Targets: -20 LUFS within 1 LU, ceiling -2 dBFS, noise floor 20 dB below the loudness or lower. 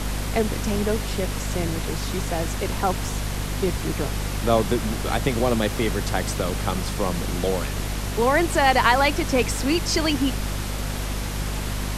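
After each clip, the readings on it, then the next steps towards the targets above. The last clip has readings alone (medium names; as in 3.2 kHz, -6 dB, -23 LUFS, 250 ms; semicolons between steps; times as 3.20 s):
hum 50 Hz; highest harmonic 250 Hz; hum level -26 dBFS; noise floor -28 dBFS; noise floor target -44 dBFS; loudness -24.0 LUFS; peak level -5.5 dBFS; loudness target -20.0 LUFS
-> hum notches 50/100/150/200/250 Hz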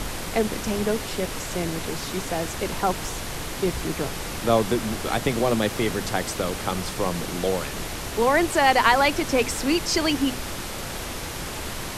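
hum not found; noise floor -33 dBFS; noise floor target -45 dBFS
-> noise print and reduce 12 dB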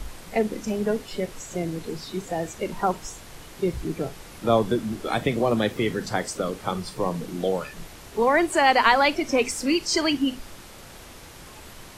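noise floor -44 dBFS; noise floor target -45 dBFS
-> noise print and reduce 6 dB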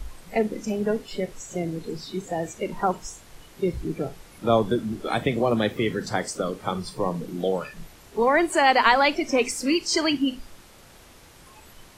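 noise floor -50 dBFS; loudness -25.0 LUFS; peak level -6.0 dBFS; loudness target -20.0 LUFS
-> trim +5 dB; peak limiter -2 dBFS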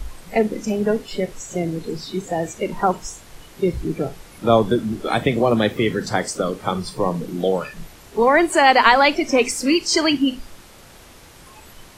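loudness -20.0 LUFS; peak level -2.0 dBFS; noise floor -45 dBFS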